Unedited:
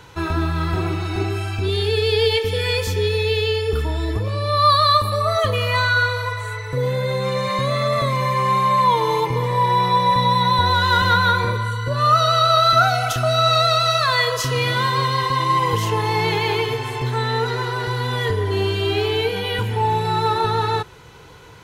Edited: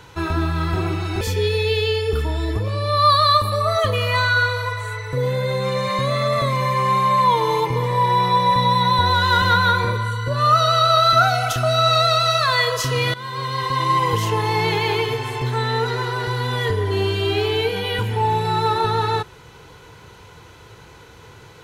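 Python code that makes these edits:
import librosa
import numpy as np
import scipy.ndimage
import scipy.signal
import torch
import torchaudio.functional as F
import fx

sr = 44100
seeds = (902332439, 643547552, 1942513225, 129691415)

y = fx.edit(x, sr, fx.cut(start_s=1.21, length_s=1.6),
    fx.fade_in_from(start_s=14.74, length_s=0.72, floor_db=-17.0), tone=tone)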